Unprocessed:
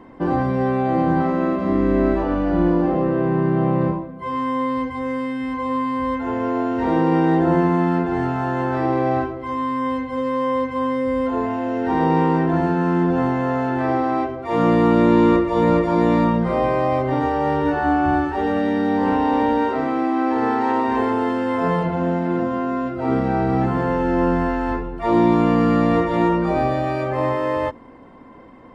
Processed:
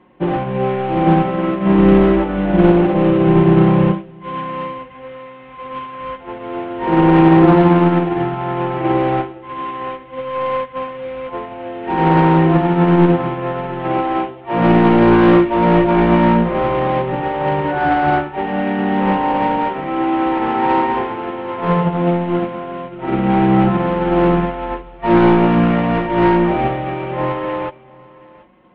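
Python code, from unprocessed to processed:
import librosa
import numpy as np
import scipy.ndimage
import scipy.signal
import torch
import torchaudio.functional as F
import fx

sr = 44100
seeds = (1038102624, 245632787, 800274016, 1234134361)

p1 = fx.cvsd(x, sr, bps=16000)
p2 = scipy.signal.sosfilt(scipy.signal.butter(2, 41.0, 'highpass', fs=sr, output='sos'), p1)
p3 = p2 + 0.65 * np.pad(p2, (int(5.5 * sr / 1000.0), 0))[:len(p2)]
p4 = fx.fold_sine(p3, sr, drive_db=8, ceiling_db=-3.5)
p5 = p3 + (p4 * 10.0 ** (-3.0 / 20.0))
p6 = p5 + 10.0 ** (-13.0 / 20.0) * np.pad(p5, (int(729 * sr / 1000.0), 0))[:len(p5)]
p7 = fx.room_shoebox(p6, sr, seeds[0], volume_m3=270.0, walls='furnished', distance_m=0.38)
p8 = fx.upward_expand(p7, sr, threshold_db=-16.0, expansion=2.5)
y = p8 * 10.0 ** (-2.0 / 20.0)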